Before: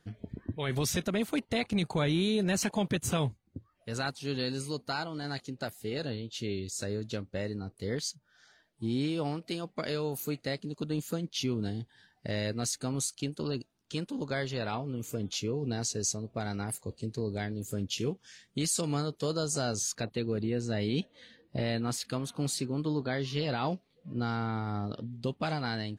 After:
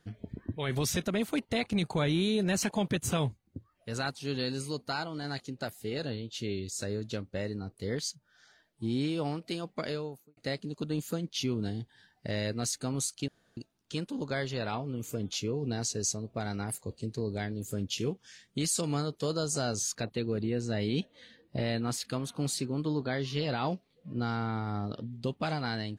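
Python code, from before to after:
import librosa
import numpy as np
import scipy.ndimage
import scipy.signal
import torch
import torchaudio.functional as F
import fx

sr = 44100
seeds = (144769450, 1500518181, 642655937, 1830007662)

y = fx.studio_fade_out(x, sr, start_s=9.79, length_s=0.58)
y = fx.edit(y, sr, fx.room_tone_fill(start_s=13.28, length_s=0.29), tone=tone)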